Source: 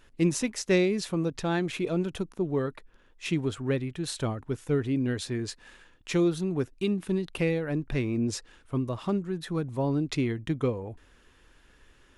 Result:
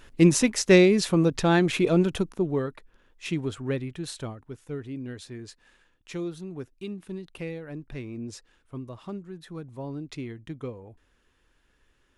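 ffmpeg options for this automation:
ffmpeg -i in.wav -af "volume=7dB,afade=type=out:start_time=2.02:duration=0.67:silence=0.398107,afade=type=out:start_time=3.96:duration=0.43:silence=0.421697" out.wav

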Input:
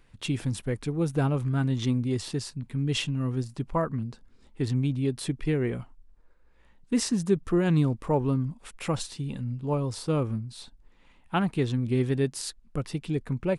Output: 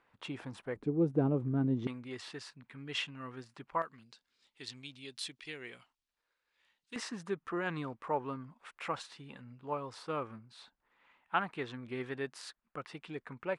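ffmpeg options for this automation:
ffmpeg -i in.wav -af "asetnsamples=nb_out_samples=441:pad=0,asendcmd='0.76 bandpass f 340;1.87 bandpass f 1600;3.82 bandpass f 3900;6.96 bandpass f 1400',bandpass=frequency=1000:width_type=q:width=1.1:csg=0" out.wav

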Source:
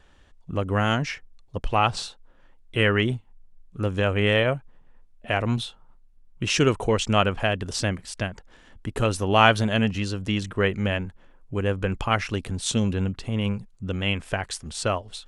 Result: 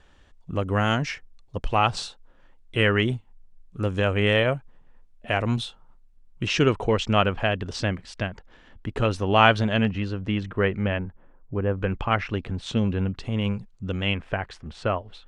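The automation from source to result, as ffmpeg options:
ffmpeg -i in.wav -af "asetnsamples=nb_out_samples=441:pad=0,asendcmd='6.47 lowpass f 4400;9.85 lowpass f 2500;10.99 lowpass f 1400;11.78 lowpass f 2900;13.13 lowpass f 6000;14.14 lowpass f 2400',lowpass=9400" out.wav

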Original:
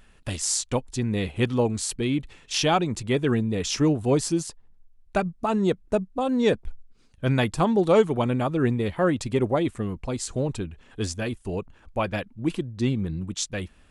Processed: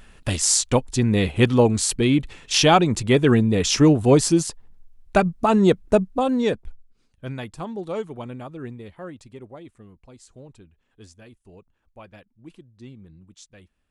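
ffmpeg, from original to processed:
ffmpeg -i in.wav -af "volume=6.5dB,afade=type=out:start_time=6.07:duration=0.42:silence=0.398107,afade=type=out:start_time=6.49:duration=0.88:silence=0.354813,afade=type=out:start_time=8.27:duration=1.15:silence=0.421697" out.wav

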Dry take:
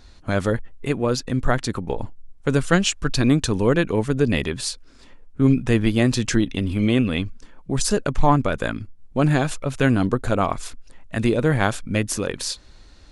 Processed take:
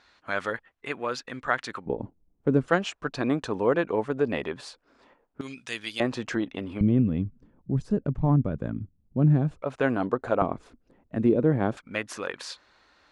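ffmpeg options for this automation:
ffmpeg -i in.wav -af "asetnsamples=nb_out_samples=441:pad=0,asendcmd='1.86 bandpass f 290;2.68 bandpass f 780;5.41 bandpass f 4500;6 bandpass f 820;6.81 bandpass f 150;9.62 bandpass f 740;10.42 bandpass f 300;11.77 bandpass f 1300',bandpass=frequency=1600:width_type=q:width=0.92:csg=0" out.wav

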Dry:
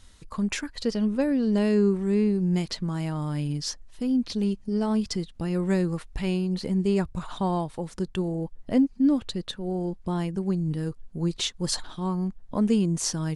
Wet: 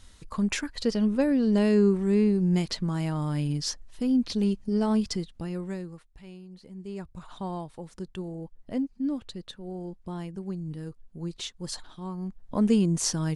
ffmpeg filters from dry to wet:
ffmpeg -i in.wav -af "volume=20dB,afade=type=out:start_time=4.95:duration=0.79:silence=0.266073,afade=type=out:start_time=5.74:duration=0.36:silence=0.398107,afade=type=in:start_time=6.7:duration=0.71:silence=0.281838,afade=type=in:start_time=12.17:duration=0.49:silence=0.375837" out.wav

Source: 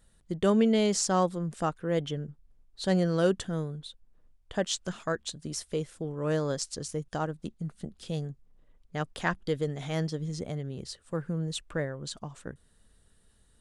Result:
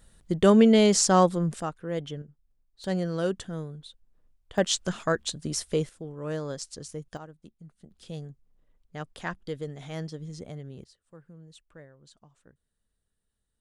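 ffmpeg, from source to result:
ffmpeg -i in.wav -af "asetnsamples=nb_out_samples=441:pad=0,asendcmd='1.6 volume volume -3dB;2.22 volume volume -10dB;2.84 volume volume -3dB;4.58 volume volume 5dB;5.89 volume volume -4dB;7.17 volume volume -13dB;7.91 volume volume -5dB;10.84 volume volume -17.5dB',volume=6dB" out.wav

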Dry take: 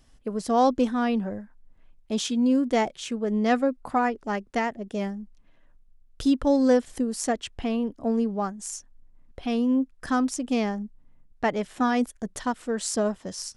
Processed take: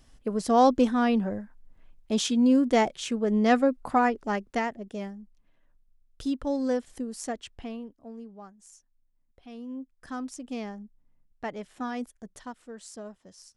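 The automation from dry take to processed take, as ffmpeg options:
ffmpeg -i in.wav -af "volume=9dB,afade=type=out:start_time=4.13:duration=0.97:silence=0.375837,afade=type=out:start_time=7.52:duration=0.47:silence=0.298538,afade=type=in:start_time=9.5:duration=0.92:silence=0.398107,afade=type=out:start_time=11.99:duration=0.92:silence=0.473151" out.wav

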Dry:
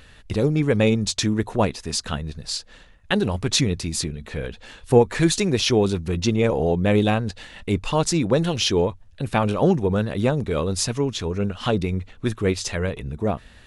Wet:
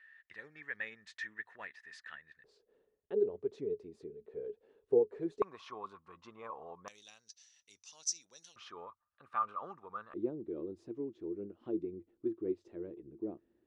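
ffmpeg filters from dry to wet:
ffmpeg -i in.wav -af "asetnsamples=nb_out_samples=441:pad=0,asendcmd='2.44 bandpass f 420;5.42 bandpass f 1100;6.88 bandpass f 5900;8.56 bandpass f 1200;10.14 bandpass f 340',bandpass=frequency=1800:width_type=q:width=15:csg=0" out.wav

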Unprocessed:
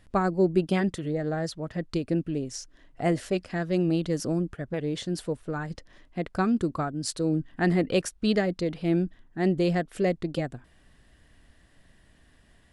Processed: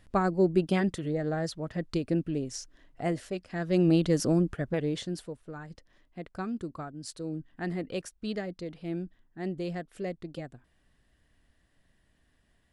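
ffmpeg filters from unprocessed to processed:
ffmpeg -i in.wav -af "volume=10dB,afade=type=out:start_time=2.59:duration=0.86:silence=0.421697,afade=type=in:start_time=3.45:duration=0.44:silence=0.266073,afade=type=out:start_time=4.62:duration=0.69:silence=0.237137" out.wav

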